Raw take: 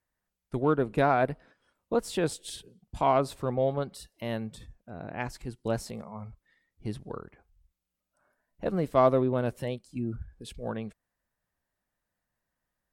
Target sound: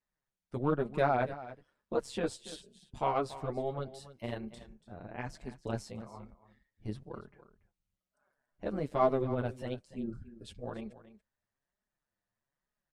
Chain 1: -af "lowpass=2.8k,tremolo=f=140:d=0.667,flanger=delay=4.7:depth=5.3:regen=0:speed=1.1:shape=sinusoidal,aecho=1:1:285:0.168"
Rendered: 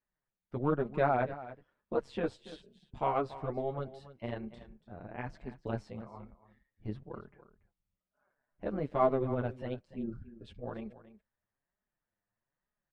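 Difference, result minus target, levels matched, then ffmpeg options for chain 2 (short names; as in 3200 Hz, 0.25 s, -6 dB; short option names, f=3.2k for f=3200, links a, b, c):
8000 Hz band -16.0 dB
-af "lowpass=8.6k,tremolo=f=140:d=0.667,flanger=delay=4.7:depth=5.3:regen=0:speed=1.1:shape=sinusoidal,aecho=1:1:285:0.168"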